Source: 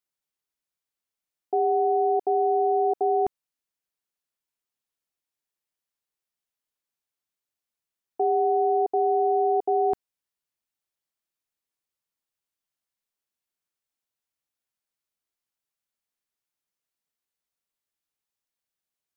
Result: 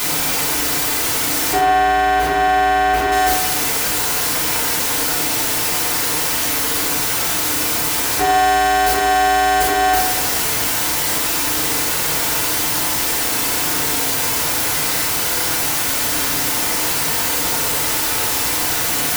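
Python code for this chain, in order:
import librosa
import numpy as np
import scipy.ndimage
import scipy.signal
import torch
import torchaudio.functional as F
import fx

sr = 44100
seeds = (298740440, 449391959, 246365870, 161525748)

y = np.sign(x) * np.sqrt(np.mean(np.square(x)))
y = fx.bass_treble(y, sr, bass_db=1, treble_db=-11, at=(1.58, 3.12))
y = fx.rev_fdn(y, sr, rt60_s=1.1, lf_ratio=0.9, hf_ratio=0.35, size_ms=20.0, drr_db=-5.5)
y = y * 10.0 ** (8.5 / 20.0)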